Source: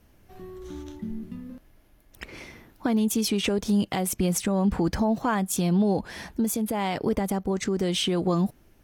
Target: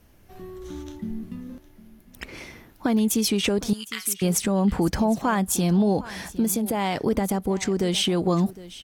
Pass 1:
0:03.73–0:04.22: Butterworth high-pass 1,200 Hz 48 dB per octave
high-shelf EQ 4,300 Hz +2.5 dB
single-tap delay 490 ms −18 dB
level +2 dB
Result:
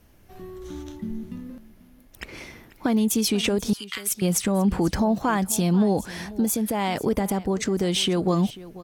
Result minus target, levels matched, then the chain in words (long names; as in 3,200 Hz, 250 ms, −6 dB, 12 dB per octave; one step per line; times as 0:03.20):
echo 269 ms early
0:03.73–0:04.22: Butterworth high-pass 1,200 Hz 48 dB per octave
high-shelf EQ 4,300 Hz +2.5 dB
single-tap delay 759 ms −18 dB
level +2 dB